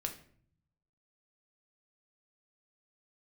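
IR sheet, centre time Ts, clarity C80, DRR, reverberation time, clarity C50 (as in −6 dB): 13 ms, 15.0 dB, 3.5 dB, 0.55 s, 11.0 dB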